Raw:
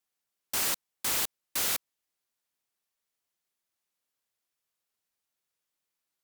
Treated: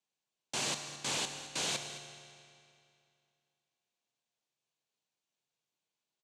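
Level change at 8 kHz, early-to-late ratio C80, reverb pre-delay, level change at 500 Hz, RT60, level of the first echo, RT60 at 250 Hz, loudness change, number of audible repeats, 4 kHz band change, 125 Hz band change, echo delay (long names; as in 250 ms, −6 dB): −5.0 dB, 8.0 dB, 8 ms, +0.5 dB, 2.5 s, −15.0 dB, 2.5 s, −6.5 dB, 1, −1.0 dB, +4.0 dB, 214 ms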